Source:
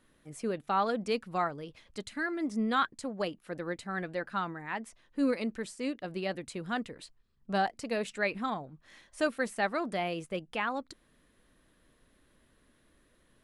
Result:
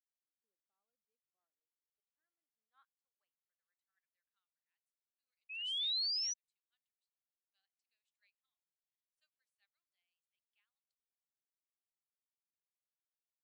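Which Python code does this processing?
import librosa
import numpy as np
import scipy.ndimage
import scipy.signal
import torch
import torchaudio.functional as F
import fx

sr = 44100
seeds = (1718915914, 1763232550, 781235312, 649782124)

y = fx.spec_paint(x, sr, seeds[0], shape='rise', start_s=5.49, length_s=0.85, low_hz=2500.0, high_hz=6000.0, level_db=-23.0)
y = fx.filter_sweep_bandpass(y, sr, from_hz=320.0, to_hz=3300.0, start_s=1.25, end_s=4.64, q=1.1)
y = np.diff(y, prepend=0.0)
y = fx.upward_expand(y, sr, threshold_db=-51.0, expansion=2.5)
y = y * librosa.db_to_amplitude(-6.5)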